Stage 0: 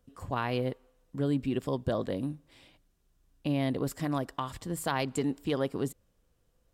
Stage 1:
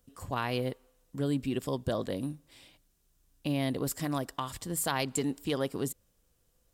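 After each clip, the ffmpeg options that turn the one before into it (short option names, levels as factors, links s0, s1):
-af "highshelf=f=4300:g=11,volume=0.841"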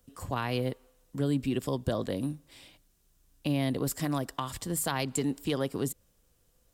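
-filter_complex "[0:a]acrossover=split=250[s0][s1];[s1]acompressor=threshold=0.0158:ratio=1.5[s2];[s0][s2]amix=inputs=2:normalize=0,volume=1.41"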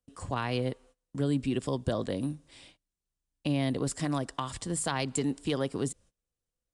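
-af "aresample=22050,aresample=44100,agate=range=0.0891:threshold=0.00178:ratio=16:detection=peak"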